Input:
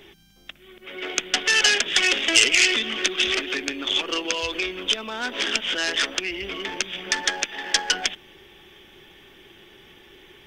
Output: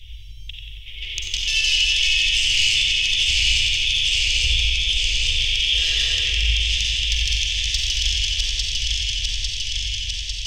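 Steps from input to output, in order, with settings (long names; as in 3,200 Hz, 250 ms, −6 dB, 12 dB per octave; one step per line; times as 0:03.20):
feedback delay that plays each chunk backwards 425 ms, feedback 82%, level −5.5 dB
inverse Chebyshev band-stop filter 160–1,600 Hz, stop band 40 dB
RIAA equalisation playback
gain on a spectral selection 0:05.73–0:06.29, 240–2,000 Hz +10 dB
low-shelf EQ 120 Hz −7 dB
brickwall limiter −19.5 dBFS, peak gain reduction 9 dB
in parallel at +3 dB: downward compressor, threshold −34 dBFS, peak gain reduction 8.5 dB
on the sum: soft clipping −12.5 dBFS, distortion −29 dB
feedback echo with a low-pass in the loop 91 ms, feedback 75%, low-pass 4,700 Hz, level −3 dB
on a send at −2 dB: convolution reverb RT60 0.70 s, pre-delay 37 ms
on the sum: level +4 dB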